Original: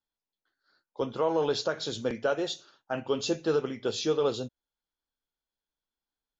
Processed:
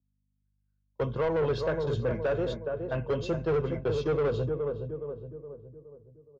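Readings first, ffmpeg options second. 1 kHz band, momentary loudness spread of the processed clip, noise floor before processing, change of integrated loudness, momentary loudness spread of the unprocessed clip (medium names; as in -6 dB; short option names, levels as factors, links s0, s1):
-2.5 dB, 14 LU, under -85 dBFS, 0.0 dB, 10 LU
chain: -filter_complex "[0:a]bass=f=250:g=11,treble=f=4000:g=-15,aecho=1:1:1.9:0.6,aeval=exprs='val(0)+0.00794*(sin(2*PI*50*n/s)+sin(2*PI*2*50*n/s)/2+sin(2*PI*3*50*n/s)/3+sin(2*PI*4*50*n/s)/4+sin(2*PI*5*50*n/s)/5)':c=same,agate=range=0.0251:threshold=0.02:ratio=16:detection=peak,highpass=48,asplit=2[s0][s1];[s1]adelay=418,lowpass=f=1100:p=1,volume=0.447,asplit=2[s2][s3];[s3]adelay=418,lowpass=f=1100:p=1,volume=0.5,asplit=2[s4][s5];[s5]adelay=418,lowpass=f=1100:p=1,volume=0.5,asplit=2[s6][s7];[s7]adelay=418,lowpass=f=1100:p=1,volume=0.5,asplit=2[s8][s9];[s9]adelay=418,lowpass=f=1100:p=1,volume=0.5,asplit=2[s10][s11];[s11]adelay=418,lowpass=f=1100:p=1,volume=0.5[s12];[s0][s2][s4][s6][s8][s10][s12]amix=inputs=7:normalize=0,acrossover=split=120[s13][s14];[s14]asoftclip=type=tanh:threshold=0.0708[s15];[s13][s15]amix=inputs=2:normalize=0,adynamicequalizer=threshold=0.00501:dfrequency=2300:dqfactor=0.7:tfrequency=2300:tqfactor=0.7:attack=5:release=100:ratio=0.375:range=2:mode=cutabove:tftype=highshelf"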